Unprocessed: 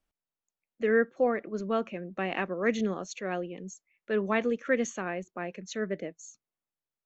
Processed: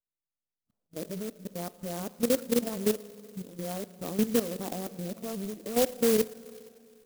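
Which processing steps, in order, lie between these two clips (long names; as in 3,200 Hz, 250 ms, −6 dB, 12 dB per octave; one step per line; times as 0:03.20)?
played backwards from end to start
Bessel low-pass filter 880 Hz, order 8
low-shelf EQ 190 Hz +5 dB
notch filter 360 Hz, Q 12
output level in coarse steps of 13 dB
four-comb reverb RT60 2.4 s, combs from 30 ms, DRR 15 dB
converter with an unsteady clock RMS 0.13 ms
level +4 dB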